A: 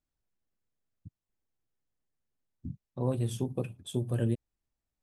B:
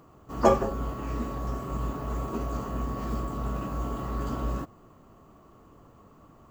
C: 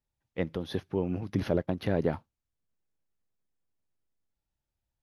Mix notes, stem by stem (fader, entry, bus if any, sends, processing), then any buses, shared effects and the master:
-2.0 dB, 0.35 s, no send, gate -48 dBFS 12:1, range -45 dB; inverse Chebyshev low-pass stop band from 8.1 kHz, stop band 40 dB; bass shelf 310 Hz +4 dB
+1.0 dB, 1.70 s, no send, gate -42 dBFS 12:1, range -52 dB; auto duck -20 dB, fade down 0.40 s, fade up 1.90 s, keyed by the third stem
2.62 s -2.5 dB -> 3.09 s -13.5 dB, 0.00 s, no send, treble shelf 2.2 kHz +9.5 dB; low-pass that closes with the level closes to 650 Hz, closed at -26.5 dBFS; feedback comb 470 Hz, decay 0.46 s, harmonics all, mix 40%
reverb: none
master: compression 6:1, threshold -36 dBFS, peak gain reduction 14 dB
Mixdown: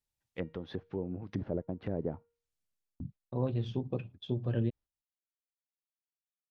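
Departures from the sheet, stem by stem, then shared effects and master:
stem A: missing bass shelf 310 Hz +4 dB; stem B: muted; master: missing compression 6:1, threshold -36 dBFS, peak gain reduction 14 dB

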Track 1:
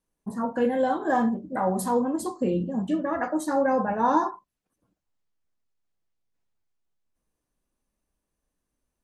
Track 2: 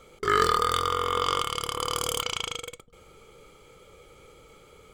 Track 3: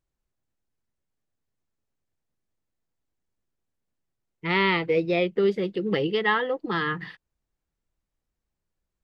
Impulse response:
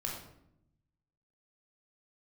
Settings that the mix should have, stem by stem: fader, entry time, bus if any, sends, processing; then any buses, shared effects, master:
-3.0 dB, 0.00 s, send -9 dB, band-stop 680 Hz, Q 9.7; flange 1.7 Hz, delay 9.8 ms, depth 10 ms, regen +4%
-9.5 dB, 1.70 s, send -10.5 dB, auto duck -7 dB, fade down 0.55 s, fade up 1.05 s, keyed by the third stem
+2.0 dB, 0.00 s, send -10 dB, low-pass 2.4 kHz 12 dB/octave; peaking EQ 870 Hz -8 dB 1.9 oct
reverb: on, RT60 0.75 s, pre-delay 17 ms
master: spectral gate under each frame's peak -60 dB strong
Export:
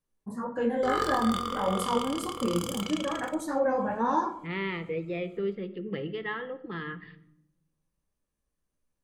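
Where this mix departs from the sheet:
stem 2: entry 1.70 s -> 0.60 s; stem 3 +2.0 dB -> -8.0 dB

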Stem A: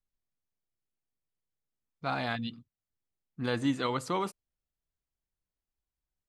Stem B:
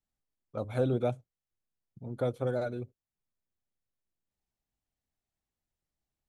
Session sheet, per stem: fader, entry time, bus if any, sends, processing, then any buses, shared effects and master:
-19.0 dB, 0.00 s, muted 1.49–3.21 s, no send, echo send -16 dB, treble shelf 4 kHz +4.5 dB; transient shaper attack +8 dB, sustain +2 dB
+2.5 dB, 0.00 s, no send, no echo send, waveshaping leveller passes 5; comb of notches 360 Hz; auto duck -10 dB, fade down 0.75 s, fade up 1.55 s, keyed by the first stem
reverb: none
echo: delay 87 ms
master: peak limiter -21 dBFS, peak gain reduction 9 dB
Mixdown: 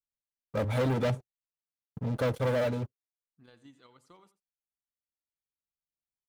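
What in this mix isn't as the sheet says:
stem A -19.0 dB -> -30.0 dB; stem B +2.5 dB -> -6.5 dB

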